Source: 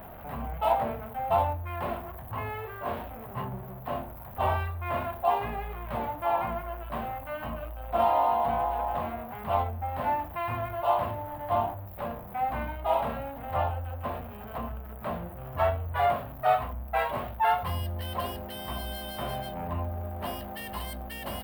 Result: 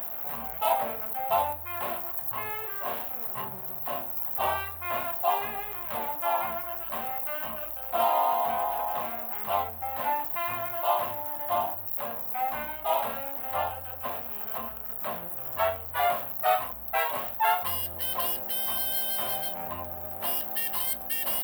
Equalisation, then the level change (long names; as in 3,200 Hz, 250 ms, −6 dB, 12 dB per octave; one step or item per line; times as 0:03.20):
RIAA equalisation recording
0.0 dB